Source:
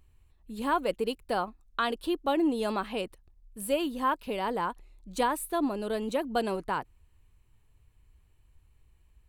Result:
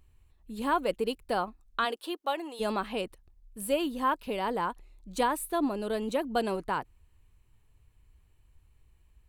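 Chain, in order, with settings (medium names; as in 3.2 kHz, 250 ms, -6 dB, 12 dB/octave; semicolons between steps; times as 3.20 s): 1.84–2.59 s: high-pass 340 Hz -> 900 Hz 12 dB/octave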